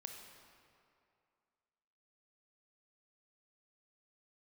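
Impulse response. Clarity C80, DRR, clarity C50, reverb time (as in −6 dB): 5.0 dB, 3.0 dB, 3.5 dB, 2.5 s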